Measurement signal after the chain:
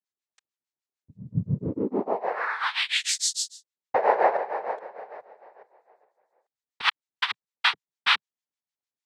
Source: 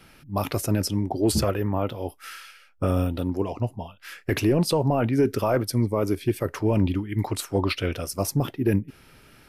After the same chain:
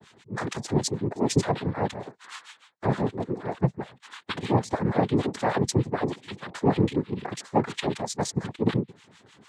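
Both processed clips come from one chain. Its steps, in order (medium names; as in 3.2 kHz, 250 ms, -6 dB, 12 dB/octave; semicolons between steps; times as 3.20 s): harmonic tremolo 6.6 Hz, depth 100%, crossover 1.1 kHz; noise-vocoded speech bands 6; trim +3.5 dB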